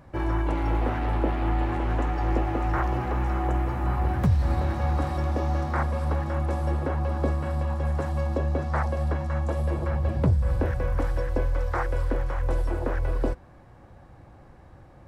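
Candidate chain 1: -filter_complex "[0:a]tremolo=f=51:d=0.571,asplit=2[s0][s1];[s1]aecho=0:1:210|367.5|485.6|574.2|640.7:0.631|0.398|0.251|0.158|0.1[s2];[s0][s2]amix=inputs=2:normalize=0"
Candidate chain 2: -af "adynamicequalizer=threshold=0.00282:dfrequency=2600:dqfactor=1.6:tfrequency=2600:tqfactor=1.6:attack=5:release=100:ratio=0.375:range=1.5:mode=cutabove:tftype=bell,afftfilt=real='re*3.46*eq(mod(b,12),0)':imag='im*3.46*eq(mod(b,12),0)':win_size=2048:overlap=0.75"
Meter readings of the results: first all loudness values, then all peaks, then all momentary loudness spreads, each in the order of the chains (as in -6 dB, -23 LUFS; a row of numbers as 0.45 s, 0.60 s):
-28.5 LUFS, -35.5 LUFS; -10.5 dBFS, -16.0 dBFS; 5 LU, 7 LU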